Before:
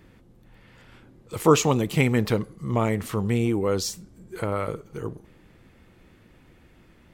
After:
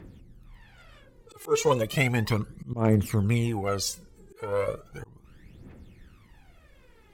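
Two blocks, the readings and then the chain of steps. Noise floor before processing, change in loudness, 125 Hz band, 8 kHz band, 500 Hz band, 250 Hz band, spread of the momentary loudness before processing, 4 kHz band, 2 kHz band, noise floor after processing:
-56 dBFS, -2.5 dB, -1.0 dB, -3.0 dB, -3.0 dB, -4.5 dB, 16 LU, -2.0 dB, -0.5 dB, -57 dBFS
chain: phaser 0.35 Hz, delay 2.5 ms, feedback 76%; auto swell 0.277 s; added harmonics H 7 -32 dB, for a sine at -6 dBFS; gain -2.5 dB

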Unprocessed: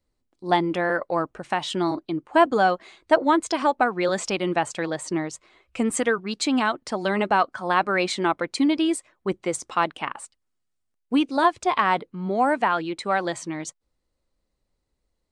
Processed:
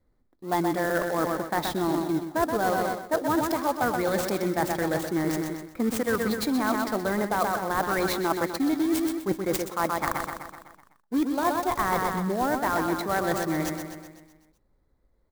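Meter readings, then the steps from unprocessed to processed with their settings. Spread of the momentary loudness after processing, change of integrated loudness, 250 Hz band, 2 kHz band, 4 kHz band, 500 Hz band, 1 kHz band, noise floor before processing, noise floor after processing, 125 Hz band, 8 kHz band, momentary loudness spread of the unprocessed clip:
4 LU, -3.0 dB, -1.5 dB, -4.0 dB, -5.5 dB, -2.5 dB, -4.0 dB, -77 dBFS, -68 dBFS, +1.5 dB, -2.0 dB, 9 LU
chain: in parallel at -10.5 dB: decimation with a swept rate 33×, swing 60% 1.3 Hz; on the sum: low-pass opened by the level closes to 2700 Hz, open at -19.5 dBFS; Butterworth band-stop 2800 Hz, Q 2.1; feedback echo 0.126 s, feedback 56%, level -8 dB; reverse; compressor 5:1, threshold -29 dBFS, peak gain reduction 15.5 dB; reverse; clock jitter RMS 0.029 ms; gain +5.5 dB

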